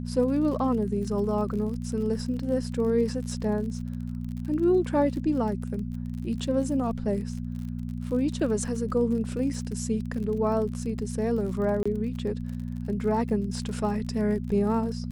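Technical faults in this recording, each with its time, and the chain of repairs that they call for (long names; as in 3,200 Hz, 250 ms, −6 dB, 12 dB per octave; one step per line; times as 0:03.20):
surface crackle 48 per second −36 dBFS
mains hum 60 Hz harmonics 4 −33 dBFS
0:11.83–0:11.86: drop-out 25 ms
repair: click removal
hum removal 60 Hz, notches 4
repair the gap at 0:11.83, 25 ms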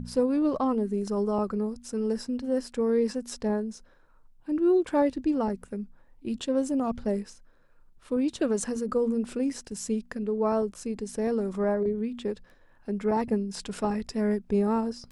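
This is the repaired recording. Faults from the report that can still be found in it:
none of them is left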